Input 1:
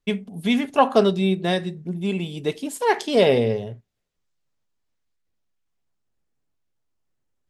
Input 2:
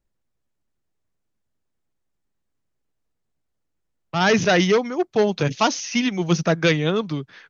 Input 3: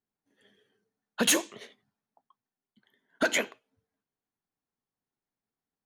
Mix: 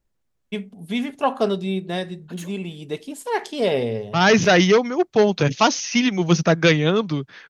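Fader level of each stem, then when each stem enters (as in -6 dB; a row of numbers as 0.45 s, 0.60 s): -4.0 dB, +2.5 dB, -17.0 dB; 0.45 s, 0.00 s, 1.10 s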